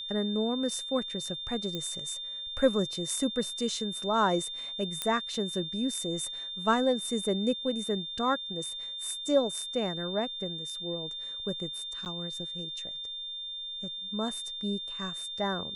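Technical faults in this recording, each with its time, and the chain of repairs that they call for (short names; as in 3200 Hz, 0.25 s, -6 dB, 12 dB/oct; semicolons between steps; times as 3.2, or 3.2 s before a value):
tone 3600 Hz -36 dBFS
1.75 pop -21 dBFS
5.02 pop -14 dBFS
12.05–12.06 gap 9.2 ms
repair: de-click; notch 3600 Hz, Q 30; interpolate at 12.05, 9.2 ms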